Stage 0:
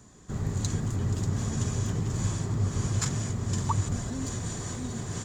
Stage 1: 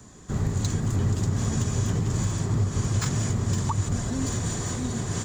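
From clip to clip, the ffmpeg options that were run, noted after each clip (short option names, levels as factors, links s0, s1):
-filter_complex "[0:a]acrossover=split=300|1300|5000[s0][s1][s2][s3];[s3]asoftclip=type=hard:threshold=0.0133[s4];[s0][s1][s2][s4]amix=inputs=4:normalize=0,alimiter=limit=0.0891:level=0:latency=1:release=240,volume=1.88"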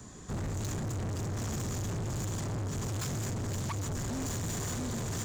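-af "volume=44.7,asoftclip=hard,volume=0.0224"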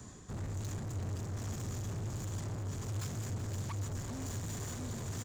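-af "equalizer=f=97:w=3.5:g=5.5,areverse,acompressor=mode=upward:threshold=0.0178:ratio=2.5,areverse,aecho=1:1:380:0.251,volume=0.447"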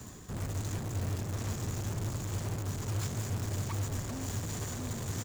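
-af "acrusher=bits=2:mode=log:mix=0:aa=0.000001,volume=1.41"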